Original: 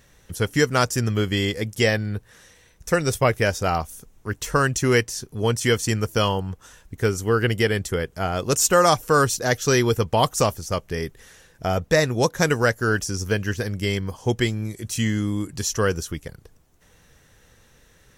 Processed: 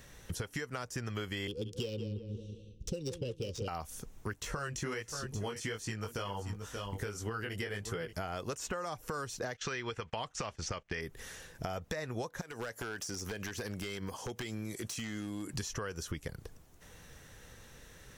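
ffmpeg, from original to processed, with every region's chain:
ffmpeg -i in.wav -filter_complex "[0:a]asettb=1/sr,asplit=3[link_01][link_02][link_03];[link_01]atrim=end=1.474[link_04];[link_02]atrim=start=1.47:end=3.68,asetpts=PTS-STARTPTS,afade=type=in:duration=0.004:curve=qsin,afade=type=out:start_time=2.206:duration=0.004:curve=qsin,asuperstop=centerf=1200:order=20:qfactor=0.55,adynamicsmooth=sensitivity=4.5:basefreq=2400,asplit=2[link_05][link_06];[link_06]adelay=181,lowpass=frequency=1800:poles=1,volume=-12.5dB,asplit=2[link_07][link_08];[link_08]adelay=181,lowpass=frequency=1800:poles=1,volume=0.38,asplit=2[link_09][link_10];[link_10]adelay=181,lowpass=frequency=1800:poles=1,volume=0.38,asplit=2[link_11][link_12];[link_12]adelay=181,lowpass=frequency=1800:poles=1,volume=0.38[link_13];[link_05][link_07][link_09][link_11][link_13]amix=inputs=5:normalize=0,atrim=end_sample=97461[link_14];[link_03]atrim=start=3.676[link_15];[link_04][link_14]acrossfade=duration=0.004:curve1=hsin:curve2=qsin[link_16];[link_16][link_15]acrossfade=duration=0.004:curve1=qsin:curve2=hsin,asettb=1/sr,asplit=3[link_17][link_18][link_19];[link_17]atrim=end=4.404[link_20];[link_18]atrim=start=4.4:end=8.13,asetpts=PTS-STARTPTS,afade=type=in:duration=0.004:curve=qsin,afade=type=out:start_time=3.726:duration=0.004:curve=qsin,flanger=delay=18:depth=3.2:speed=1.4,aecho=1:1:578:0.133,atrim=end_sample=164493[link_21];[link_19]atrim=start=8.126[link_22];[link_20][link_21]acrossfade=duration=0.004:curve1=hsin:curve2=qsin[link_23];[link_23][link_22]acrossfade=duration=0.004:curve1=qsin:curve2=hsin,asettb=1/sr,asplit=3[link_24][link_25][link_26];[link_24]atrim=end=9.544[link_27];[link_25]atrim=start=9.54:end=11.01,asetpts=PTS-STARTPTS,afade=type=in:duration=0.004:curve=qsin,afade=type=out:start_time=1.466:duration=0.004:curve=qsin,agate=range=-17dB:threshold=-37dB:ratio=16:release=100:detection=peak,lowpass=frequency=7400:width=0.5412,lowpass=frequency=7400:width=1.3066,equalizer=frequency=2500:width=0.57:gain=11.5[link_28];[link_26]atrim=start=11.006[link_29];[link_27][link_28]acrossfade=duration=0.004:curve1=hsin:curve2=qsin[link_30];[link_30][link_29]acrossfade=duration=0.004:curve1=qsin:curve2=hsin,asettb=1/sr,asplit=3[link_31][link_32][link_33];[link_31]atrim=end=12.414[link_34];[link_32]atrim=start=12.41:end=15.54,asetpts=PTS-STARTPTS,afade=type=in:duration=0.004:curve=qsin,afade=type=out:start_time=3.126:duration=0.004:curve=qsin,highpass=frequency=320:poles=1,acompressor=threshold=-33dB:ratio=16:attack=3.2:release=140:knee=1:detection=peak,aeval=exprs='0.0282*(abs(mod(val(0)/0.0282+3,4)-2)-1)':channel_layout=same[link_35];[link_33]atrim=start=15.536[link_36];[link_34][link_35]acrossfade=duration=0.004:curve1=hsin:curve2=qsin[link_37];[link_37][link_36]acrossfade=duration=0.004:curve1=qsin:curve2=hsin,acrossover=split=560|2700|7800[link_38][link_39][link_40][link_41];[link_38]acompressor=threshold=-30dB:ratio=4[link_42];[link_39]acompressor=threshold=-24dB:ratio=4[link_43];[link_40]acompressor=threshold=-39dB:ratio=4[link_44];[link_41]acompressor=threshold=-51dB:ratio=4[link_45];[link_42][link_43][link_44][link_45]amix=inputs=4:normalize=0,alimiter=limit=-18.5dB:level=0:latency=1:release=244,acompressor=threshold=-36dB:ratio=6,volume=1dB" out.wav

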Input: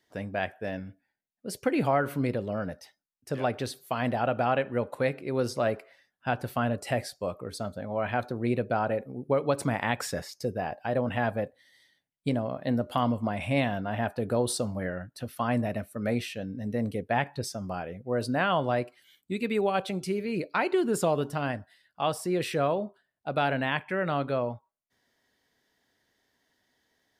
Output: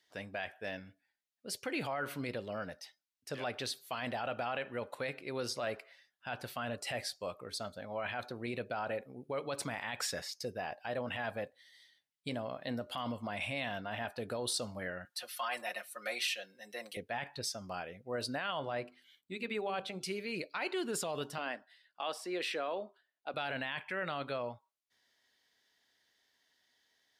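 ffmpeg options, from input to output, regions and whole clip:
ffmpeg -i in.wav -filter_complex "[0:a]asettb=1/sr,asplit=3[link_01][link_02][link_03];[link_01]atrim=end=15.054[link_04];[link_02]atrim=start=15.05:end=16.97,asetpts=PTS-STARTPTS,afade=type=in:duration=0.004:curve=qsin,afade=type=out:start_time=1.916:duration=0.004:curve=qsin,highpass=660,highshelf=frequency=5600:gain=4.5,aecho=1:1:5.6:0.97,atrim=end_sample=84672[link_05];[link_03]atrim=start=16.966[link_06];[link_04][link_05]acrossfade=duration=0.004:curve1=hsin:curve2=qsin[link_07];[link_07][link_06]acrossfade=duration=0.004:curve1=qsin:curve2=hsin,asettb=1/sr,asplit=3[link_08][link_09][link_10];[link_08]atrim=end=18.594[link_11];[link_09]atrim=start=18.59:end=20.01,asetpts=PTS-STARTPTS,afade=type=in:duration=0.004:curve=qsin,afade=type=out:start_time=1.416:duration=0.004:curve=qsin,highshelf=frequency=2900:gain=-9.5,bandreject=frequency=50:width_type=h:width=6,bandreject=frequency=100:width_type=h:width=6,bandreject=frequency=150:width_type=h:width=6,bandreject=frequency=200:width_type=h:width=6,bandreject=frequency=250:width_type=h:width=6,bandreject=frequency=300:width_type=h:width=6,bandreject=frequency=350:width_type=h:width=6,bandreject=frequency=400:width_type=h:width=6,bandreject=frequency=450:width_type=h:width=6[link_12];[link_10]atrim=start=20.006[link_13];[link_11][link_12]acrossfade=duration=0.004:curve1=hsin:curve2=qsin[link_14];[link_14][link_13]acrossfade=duration=0.004:curve1=qsin:curve2=hsin,asettb=1/sr,asplit=3[link_15][link_16][link_17];[link_15]atrim=end=21.384[link_18];[link_16]atrim=start=21.38:end=23.34,asetpts=PTS-STARTPTS,afade=type=in:duration=0.004:curve=qsin,afade=type=out:start_time=1.956:duration=0.004:curve=qsin,highpass=frequency=240:width=0.5412,highpass=frequency=240:width=1.3066,highshelf=frequency=5500:gain=-10[link_19];[link_17]atrim=start=23.336[link_20];[link_18][link_19]acrossfade=duration=0.004:curve1=hsin:curve2=qsin[link_21];[link_21][link_20]acrossfade=duration=0.004:curve1=qsin:curve2=hsin,lowshelf=frequency=450:gain=-9,alimiter=level_in=0.5dB:limit=-24dB:level=0:latency=1:release=11,volume=-0.5dB,equalizer=frequency=3800:width_type=o:width=1.9:gain=7,volume=-4.5dB" out.wav

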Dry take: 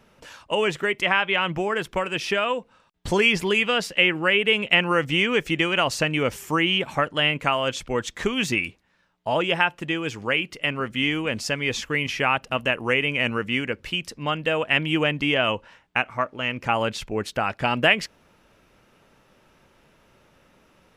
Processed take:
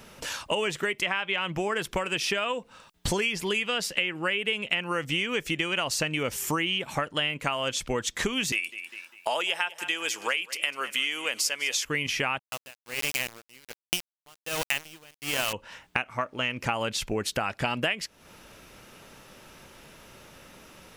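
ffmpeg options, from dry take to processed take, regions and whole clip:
ffmpeg -i in.wav -filter_complex "[0:a]asettb=1/sr,asplit=3[link_01][link_02][link_03];[link_01]atrim=end=8.524[link_04];[link_02]atrim=start=8.52:end=11.85,asetpts=PTS-STARTPTS,afade=type=in:duration=0.004:curve=qsin,afade=type=out:start_time=3.326:duration=0.004:curve=qsin,highpass=560,aemphasis=mode=production:type=cd,aecho=1:1:200|400|600:0.126|0.039|0.0121,atrim=end_sample=146853[link_05];[link_03]atrim=start=11.846[link_06];[link_04][link_05]acrossfade=duration=0.004:curve1=hsin:curve2=qsin[link_07];[link_07][link_06]acrossfade=duration=0.004:curve1=qsin:curve2=hsin,asettb=1/sr,asplit=3[link_08][link_09][link_10];[link_08]atrim=end=12.394[link_11];[link_09]atrim=start=12.39:end=15.53,asetpts=PTS-STARTPTS,afade=type=in:duration=0.004:curve=qsin,afade=type=out:start_time=3.136:duration=0.004:curve=qsin,aeval=exprs='val(0)*gte(abs(val(0)),0.0841)':channel_layout=same,aeval=exprs='val(0)*pow(10,-37*(0.5-0.5*cos(2*PI*1.3*n/s))/20)':channel_layout=same[link_12];[link_10]atrim=start=15.526[link_13];[link_11][link_12]acrossfade=duration=0.004:curve1=hsin:curve2=qsin[link_14];[link_14][link_13]acrossfade=duration=0.004:curve1=qsin:curve2=hsin,highshelf=frequency=3700:gain=10,acompressor=threshold=-33dB:ratio=5,volume=6.5dB" out.wav

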